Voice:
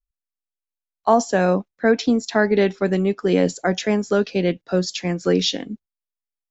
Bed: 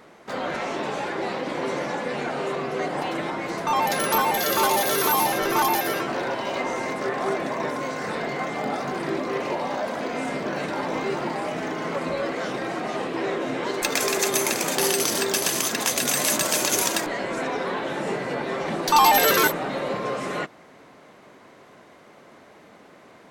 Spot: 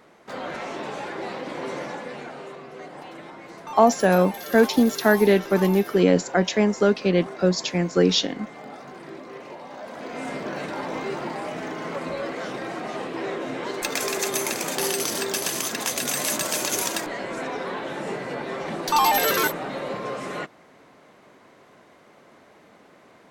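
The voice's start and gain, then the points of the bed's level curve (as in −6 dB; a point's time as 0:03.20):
2.70 s, 0.0 dB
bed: 0:01.83 −4 dB
0:02.60 −12.5 dB
0:09.68 −12.5 dB
0:10.28 −3 dB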